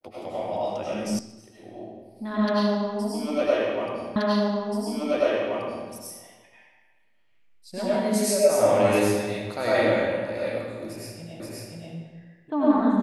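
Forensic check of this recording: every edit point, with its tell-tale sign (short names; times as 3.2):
1.19 sound cut off
4.16 repeat of the last 1.73 s
11.4 repeat of the last 0.53 s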